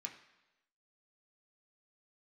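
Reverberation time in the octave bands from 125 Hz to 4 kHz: 0.90 s, 0.90 s, 1.0 s, 1.0 s, 1.0 s, 1.0 s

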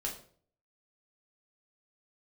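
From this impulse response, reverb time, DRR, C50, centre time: 0.50 s, -2.0 dB, 8.5 dB, 23 ms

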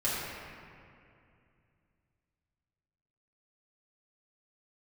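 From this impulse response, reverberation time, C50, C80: 2.5 s, -2.5 dB, -0.5 dB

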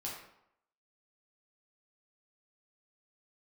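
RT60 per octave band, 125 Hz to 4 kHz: 0.65 s, 0.75 s, 0.75 s, 0.75 s, 0.65 s, 0.50 s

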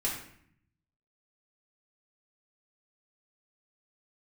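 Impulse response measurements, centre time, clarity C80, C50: 37 ms, 7.5 dB, 4.0 dB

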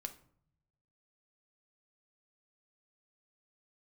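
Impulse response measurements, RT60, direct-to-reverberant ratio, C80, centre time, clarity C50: 0.60 s, 6.5 dB, 19.0 dB, 7 ms, 13.5 dB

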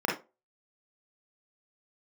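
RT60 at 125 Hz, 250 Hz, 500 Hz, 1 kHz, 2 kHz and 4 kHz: 0.25 s, 0.25 s, 0.30 s, 0.25 s, 0.20 s, 0.20 s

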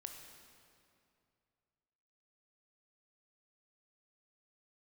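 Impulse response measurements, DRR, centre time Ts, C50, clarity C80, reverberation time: 3.5 dB, 57 ms, 4.5 dB, 5.5 dB, 2.5 s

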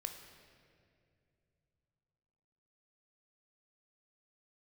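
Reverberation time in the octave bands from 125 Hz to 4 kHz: 4.1 s, 3.4 s, 2.9 s, 2.0 s, 2.1 s, 1.6 s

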